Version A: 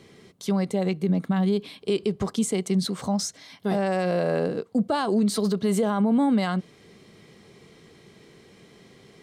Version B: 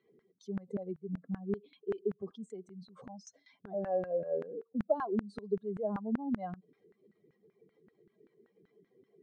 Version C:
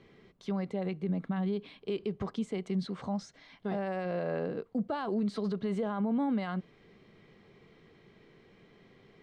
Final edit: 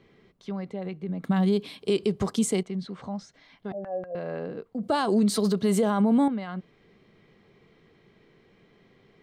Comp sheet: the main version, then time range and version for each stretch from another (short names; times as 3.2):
C
1.24–2.63 from A
3.72–4.15 from B
4.83–6.28 from A